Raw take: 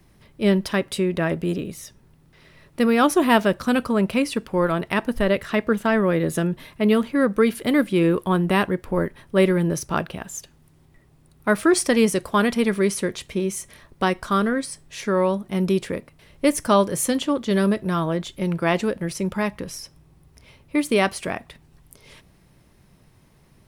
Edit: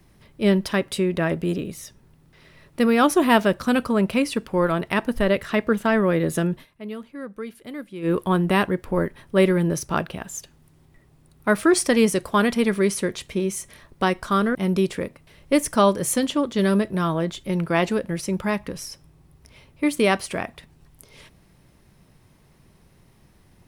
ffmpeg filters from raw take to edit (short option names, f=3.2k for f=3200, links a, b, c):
-filter_complex "[0:a]asplit=4[a][b][c][d];[a]atrim=end=6.66,asetpts=PTS-STARTPTS,afade=t=out:st=6.52:d=0.14:c=qsin:silence=0.16788[e];[b]atrim=start=6.66:end=8.02,asetpts=PTS-STARTPTS,volume=-15.5dB[f];[c]atrim=start=8.02:end=14.552,asetpts=PTS-STARTPTS,afade=t=in:d=0.14:c=qsin:silence=0.16788[g];[d]atrim=start=15.468[h];[e][f][g]concat=n=3:v=0:a=1[i];[i][h]acrossfade=d=0.004:c1=hsin:c2=hsin"